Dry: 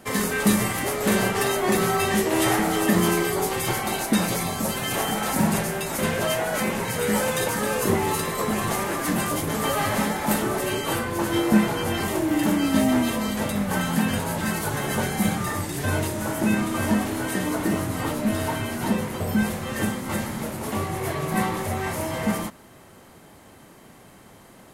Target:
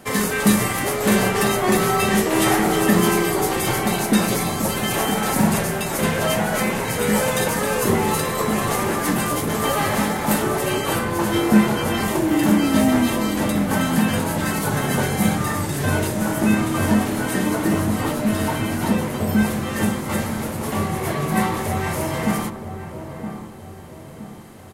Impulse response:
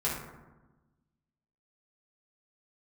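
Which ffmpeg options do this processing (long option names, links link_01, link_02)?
-filter_complex "[0:a]asettb=1/sr,asplit=3[link_01][link_02][link_03];[link_01]atrim=end=9.144[link_04];[link_02]atrim=start=9.14:end=10.34,asetpts=PTS-STARTPTS,afade=type=in:duration=0.004:curve=qsin,afade=type=out:start_time=1.196:duration=0.004:curve=qsin,aeval=exprs='sgn(val(0))*max(abs(val(0))-0.00447,0)':channel_layout=same[link_05];[link_03]atrim=start=10.336[link_06];[link_04][link_05]acrossfade=duration=0.004:curve1=hsin:curve2=qsin[link_07];[link_07][link_06]acrossfade=duration=0.004:curve1=qsin:curve2=hsin,asplit=2[link_08][link_09];[link_09]adelay=967,lowpass=frequency=960:poles=1,volume=-8.5dB,asplit=2[link_10][link_11];[link_11]adelay=967,lowpass=frequency=960:poles=1,volume=0.5,asplit=2[link_12][link_13];[link_13]adelay=967,lowpass=frequency=960:poles=1,volume=0.5,asplit=2[link_14][link_15];[link_15]adelay=967,lowpass=frequency=960:poles=1,volume=0.5,asplit=2[link_16][link_17];[link_17]adelay=967,lowpass=frequency=960:poles=1,volume=0.5,asplit=2[link_18][link_19];[link_19]adelay=967,lowpass=frequency=960:poles=1,volume=0.5[link_20];[link_08][link_10][link_12][link_14][link_16][link_18][link_20]amix=inputs=7:normalize=0,asplit=2[link_21][link_22];[1:a]atrim=start_sample=2205[link_23];[link_22][link_23]afir=irnorm=-1:irlink=0,volume=-20.5dB[link_24];[link_21][link_24]amix=inputs=2:normalize=0,volume=2.5dB"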